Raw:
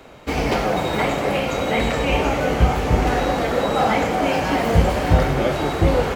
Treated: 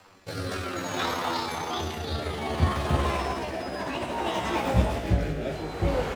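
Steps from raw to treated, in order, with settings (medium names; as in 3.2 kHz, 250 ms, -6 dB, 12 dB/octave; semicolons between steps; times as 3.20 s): pitch bend over the whole clip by +11.5 st ending unshifted; rotary cabinet horn 0.6 Hz; trim -6 dB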